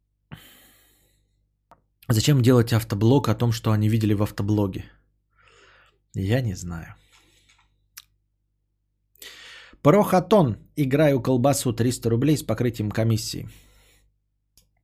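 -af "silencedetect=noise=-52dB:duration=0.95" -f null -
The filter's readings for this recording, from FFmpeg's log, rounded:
silence_start: 8.05
silence_end: 9.15 | silence_duration: 1.11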